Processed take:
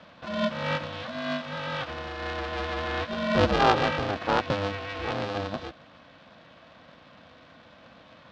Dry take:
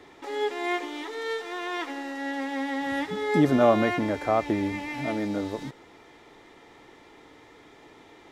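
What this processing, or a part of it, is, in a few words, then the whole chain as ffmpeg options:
ring modulator pedal into a guitar cabinet: -af "aeval=exprs='val(0)*sgn(sin(2*PI*200*n/s))':channel_layout=same,highpass=84,equalizer=frequency=110:width_type=q:width=4:gain=-7,equalizer=frequency=410:width_type=q:width=4:gain=-10,equalizer=frequency=900:width_type=q:width=4:gain=-4,equalizer=frequency=2100:width_type=q:width=4:gain=-7,lowpass=frequency=4500:width=0.5412,lowpass=frequency=4500:width=1.3066,volume=2dB"

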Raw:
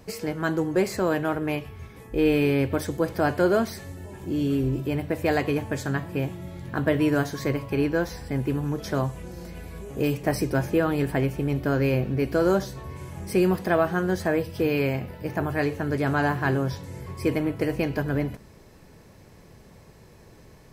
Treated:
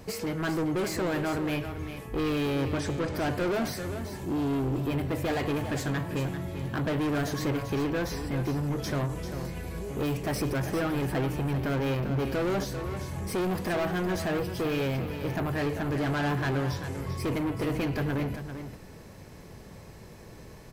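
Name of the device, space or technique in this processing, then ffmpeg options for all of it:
saturation between pre-emphasis and de-emphasis: -filter_complex "[0:a]highshelf=frequency=7000:gain=11,asoftclip=type=tanh:threshold=-29dB,highshelf=frequency=7000:gain=-11,asettb=1/sr,asplit=3[link_01][link_02][link_03];[link_01]atrim=end=2.724[link_04];[link_02]atrim=start=2.72:end=3.15,asetpts=PTS-STARTPTS,afade=type=in:duration=0.004:curve=qsin,afade=type=out:start_time=0.426:duration=0.004:curve=qsin,lowpass=frequency=8100:width=0.5412,lowpass=frequency=8100:width=1.3066[link_05];[link_03]atrim=start=3.146[link_06];[link_04][link_05]acrossfade=duration=0.004:curve1=hsin:curve2=qsin[link_07];[link_07][link_06]acrossfade=duration=0.004:curve1=qsin:curve2=hsin,aecho=1:1:393:0.335,volume=3dB"

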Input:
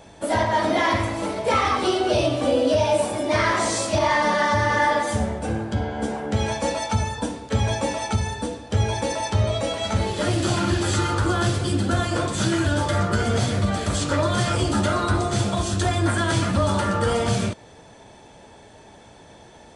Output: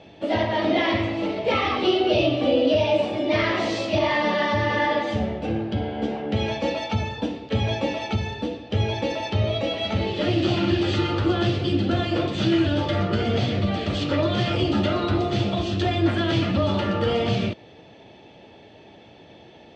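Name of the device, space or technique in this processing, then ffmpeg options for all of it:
guitar cabinet: -af "highpass=90,equalizer=frequency=330:width_type=q:width=4:gain=4,equalizer=frequency=1000:width_type=q:width=4:gain=-8,equalizer=frequency=1500:width_type=q:width=4:gain=-8,equalizer=frequency=2800:width_type=q:width=4:gain=6,lowpass=frequency=4300:width=0.5412,lowpass=frequency=4300:width=1.3066"

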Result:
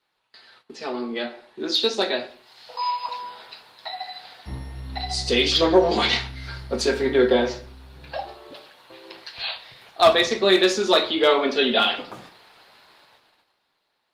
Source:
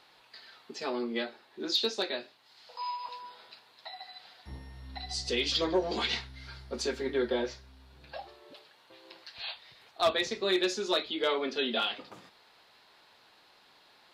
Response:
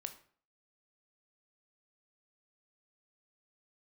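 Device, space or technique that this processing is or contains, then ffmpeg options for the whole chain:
speakerphone in a meeting room: -filter_complex "[0:a]adynamicequalizer=threshold=0.00398:dfrequency=750:dqfactor=5.4:tfrequency=750:tqfactor=5.4:attack=5:release=100:ratio=0.375:range=1.5:mode=boostabove:tftype=bell[link_01];[1:a]atrim=start_sample=2205[link_02];[link_01][link_02]afir=irnorm=-1:irlink=0,dynaudnorm=framelen=480:gausssize=7:maxgain=8dB,agate=range=-15dB:threshold=-58dB:ratio=16:detection=peak,volume=6.5dB" -ar 48000 -c:a libopus -b:a 32k

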